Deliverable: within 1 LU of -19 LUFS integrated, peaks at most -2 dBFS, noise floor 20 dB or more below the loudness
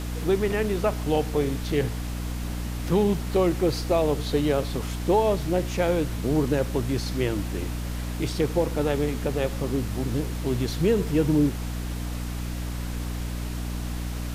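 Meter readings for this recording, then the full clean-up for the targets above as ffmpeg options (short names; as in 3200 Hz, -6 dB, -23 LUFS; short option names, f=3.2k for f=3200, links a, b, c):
hum 60 Hz; harmonics up to 300 Hz; hum level -28 dBFS; noise floor -31 dBFS; noise floor target -46 dBFS; loudness -26.0 LUFS; peak -10.5 dBFS; loudness target -19.0 LUFS
-> -af "bandreject=f=60:t=h:w=6,bandreject=f=120:t=h:w=6,bandreject=f=180:t=h:w=6,bandreject=f=240:t=h:w=6,bandreject=f=300:t=h:w=6"
-af "afftdn=nr=15:nf=-31"
-af "volume=7dB"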